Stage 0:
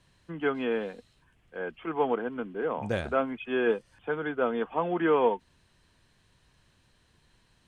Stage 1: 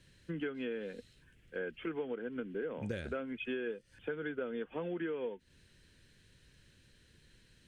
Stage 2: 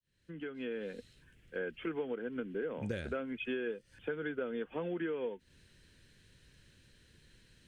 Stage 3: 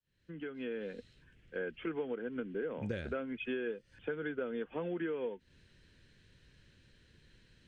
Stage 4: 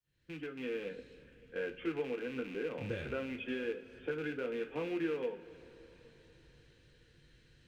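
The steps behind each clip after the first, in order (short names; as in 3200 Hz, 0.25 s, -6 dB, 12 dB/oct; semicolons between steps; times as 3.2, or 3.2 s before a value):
band shelf 890 Hz -12.5 dB 1.1 oct; compressor 16:1, threshold -36 dBFS, peak gain reduction 16.5 dB; gain +1.5 dB
opening faded in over 0.84 s; gain +1 dB
air absorption 78 m
rattling part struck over -47 dBFS, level -37 dBFS; two-slope reverb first 0.24 s, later 4.5 s, from -21 dB, DRR 4 dB; gain -2 dB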